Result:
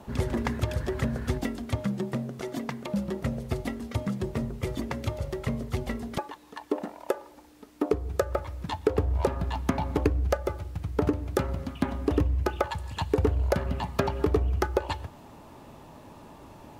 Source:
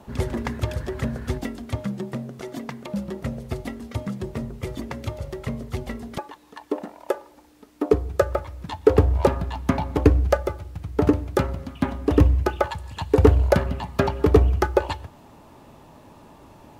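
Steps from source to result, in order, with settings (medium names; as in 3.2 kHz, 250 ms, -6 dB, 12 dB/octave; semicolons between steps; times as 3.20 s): compression 4:1, threshold -22 dBFS, peak gain reduction 11.5 dB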